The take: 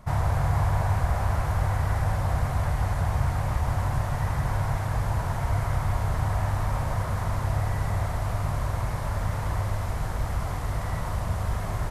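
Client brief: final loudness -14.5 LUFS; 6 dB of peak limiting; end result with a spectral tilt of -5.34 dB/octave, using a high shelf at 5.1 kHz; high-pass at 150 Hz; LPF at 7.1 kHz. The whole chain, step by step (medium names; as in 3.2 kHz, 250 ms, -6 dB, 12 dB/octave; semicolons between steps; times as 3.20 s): high-pass 150 Hz; low-pass 7.1 kHz; treble shelf 5.1 kHz +6 dB; trim +19 dB; peak limiter -4.5 dBFS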